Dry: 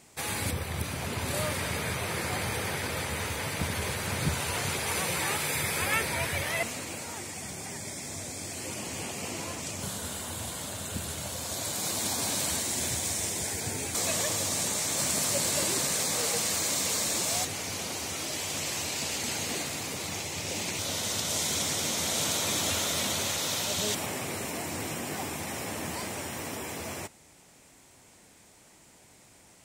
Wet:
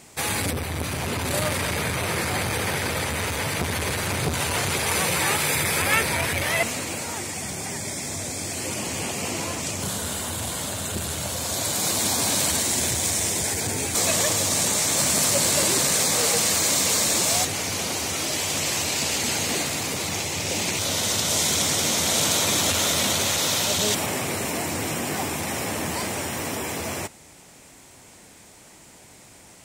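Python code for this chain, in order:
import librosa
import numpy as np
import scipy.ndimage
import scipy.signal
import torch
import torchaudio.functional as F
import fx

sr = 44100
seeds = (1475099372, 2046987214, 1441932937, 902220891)

y = fx.transformer_sat(x, sr, knee_hz=1000.0)
y = F.gain(torch.from_numpy(y), 8.0).numpy()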